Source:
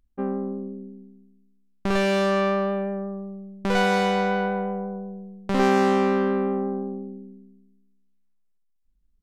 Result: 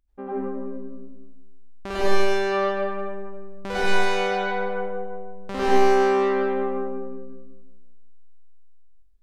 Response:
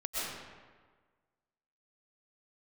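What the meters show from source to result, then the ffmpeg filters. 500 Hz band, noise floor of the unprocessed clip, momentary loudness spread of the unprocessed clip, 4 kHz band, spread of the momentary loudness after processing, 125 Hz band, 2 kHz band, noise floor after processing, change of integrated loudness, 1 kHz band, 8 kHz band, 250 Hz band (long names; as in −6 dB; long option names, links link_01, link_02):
+1.5 dB, −67 dBFS, 17 LU, +0.5 dB, 19 LU, can't be measured, +1.5 dB, −44 dBFS, 0.0 dB, +1.0 dB, +1.0 dB, −5.5 dB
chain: -filter_complex "[0:a]equalizer=frequency=180:width=2:gain=-9[link_01];[1:a]atrim=start_sample=2205,asetrate=57330,aresample=44100[link_02];[link_01][link_02]afir=irnorm=-1:irlink=0"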